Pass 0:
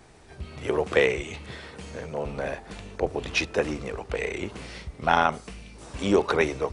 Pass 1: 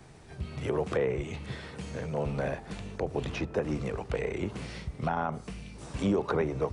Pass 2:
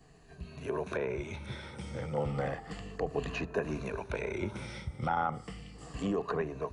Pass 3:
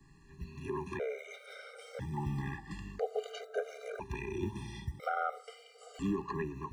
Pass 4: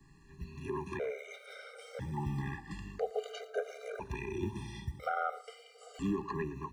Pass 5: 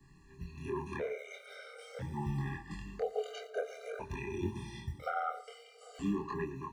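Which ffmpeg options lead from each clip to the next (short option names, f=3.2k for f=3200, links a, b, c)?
-filter_complex "[0:a]equalizer=f=140:t=o:w=1.2:g=8,acrossover=split=170|1500[a][b][c];[c]acompressor=threshold=-41dB:ratio=6[d];[a][b][d]amix=inputs=3:normalize=0,alimiter=limit=-16dB:level=0:latency=1:release=155,volume=-2dB"
-af "afftfilt=real='re*pow(10,11/40*sin(2*PI*(1.5*log(max(b,1)*sr/1024/100)/log(2)-(-0.33)*(pts-256)/sr)))':imag='im*pow(10,11/40*sin(2*PI*(1.5*log(max(b,1)*sr/1024/100)/log(2)-(-0.33)*(pts-256)/sr)))':win_size=1024:overlap=0.75,adynamicequalizer=threshold=0.00794:dfrequency=1400:dqfactor=0.71:tfrequency=1400:tqfactor=0.71:attack=5:release=100:ratio=0.375:range=2:mode=boostabove:tftype=bell,dynaudnorm=f=230:g=9:m=3.5dB,volume=-8dB"
-filter_complex "[0:a]acrossover=split=130|980[a][b][c];[a]acrusher=samples=23:mix=1:aa=0.000001[d];[d][b][c]amix=inputs=3:normalize=0,afftfilt=real='re*gt(sin(2*PI*0.5*pts/sr)*(1-2*mod(floor(b*sr/1024/400),2)),0)':imag='im*gt(sin(2*PI*0.5*pts/sr)*(1-2*mod(floor(b*sr/1024/400),2)),0)':win_size=1024:overlap=0.75"
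-af "aecho=1:1:114:0.106"
-af "flanger=delay=22.5:depth=3.1:speed=0.45,volume=2.5dB"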